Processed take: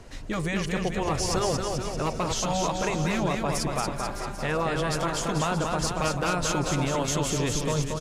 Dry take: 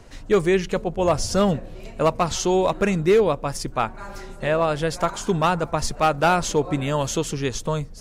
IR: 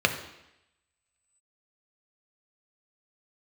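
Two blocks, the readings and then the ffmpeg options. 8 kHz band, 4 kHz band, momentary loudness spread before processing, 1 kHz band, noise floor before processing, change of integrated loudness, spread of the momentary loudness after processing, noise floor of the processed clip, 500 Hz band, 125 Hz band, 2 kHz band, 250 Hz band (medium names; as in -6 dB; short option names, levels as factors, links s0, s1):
+0.5 dB, -0.5 dB, 8 LU, -5.0 dB, -39 dBFS, -5.0 dB, 4 LU, -34 dBFS, -8.0 dB, -2.0 dB, -3.0 dB, -4.0 dB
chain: -filter_complex "[0:a]afftfilt=real='re*lt(hypot(re,im),0.794)':imag='im*lt(hypot(re,im),0.794)':win_size=1024:overlap=0.75,alimiter=limit=0.112:level=0:latency=1,asplit=2[s0][s1];[s1]aecho=0:1:230|437|623.3|791|941.9:0.631|0.398|0.251|0.158|0.1[s2];[s0][s2]amix=inputs=2:normalize=0,aresample=32000,aresample=44100"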